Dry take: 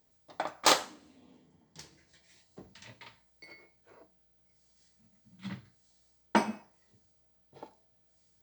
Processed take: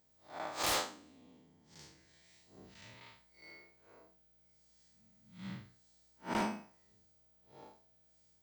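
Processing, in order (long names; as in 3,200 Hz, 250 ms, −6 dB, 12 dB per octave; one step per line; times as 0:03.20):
spectrum smeared in time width 128 ms
wave folding −26.5 dBFS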